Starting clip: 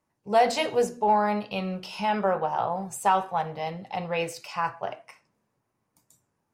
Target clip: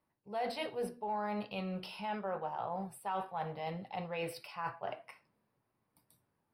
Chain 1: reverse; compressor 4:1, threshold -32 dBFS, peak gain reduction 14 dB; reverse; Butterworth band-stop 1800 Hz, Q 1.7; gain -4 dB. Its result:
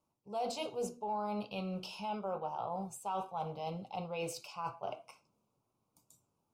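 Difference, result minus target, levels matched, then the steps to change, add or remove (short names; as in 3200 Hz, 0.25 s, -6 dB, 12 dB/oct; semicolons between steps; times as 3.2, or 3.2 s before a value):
8000 Hz band +8.0 dB
change: Butterworth band-stop 6800 Hz, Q 1.7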